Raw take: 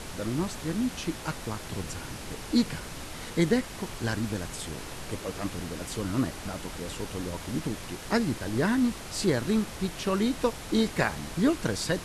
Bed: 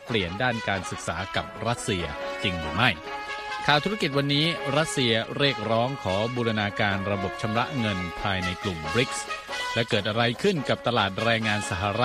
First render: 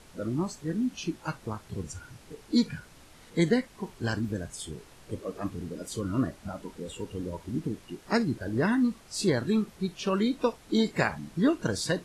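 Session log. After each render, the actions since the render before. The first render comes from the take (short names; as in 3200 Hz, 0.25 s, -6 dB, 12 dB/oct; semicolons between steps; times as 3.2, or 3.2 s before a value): noise print and reduce 14 dB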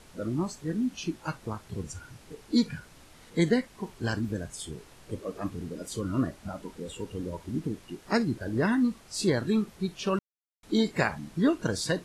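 10.19–10.63 mute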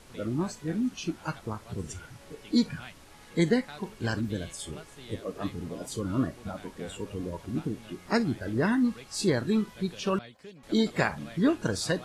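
add bed -24.5 dB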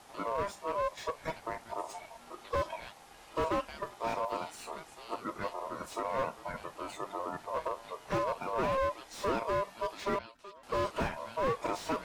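ring modulator 800 Hz; slew limiter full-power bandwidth 32 Hz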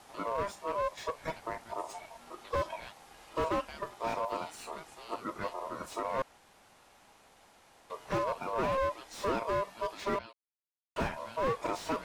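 6.22–7.9 room tone; 10.33–10.96 mute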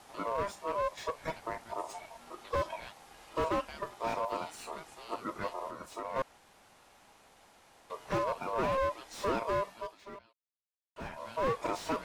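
5.71–6.16 gain -4.5 dB; 9.65–11.3 dip -15 dB, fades 0.33 s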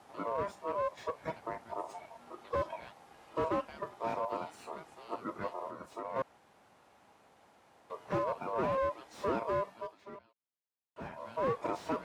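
HPF 84 Hz 12 dB/oct; high shelf 2200 Hz -10.5 dB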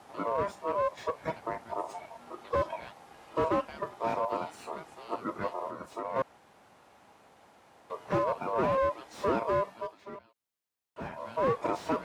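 gain +4.5 dB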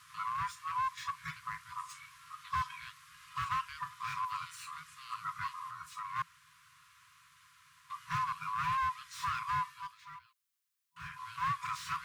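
FFT band-reject 170–990 Hz; tilt +1.5 dB/oct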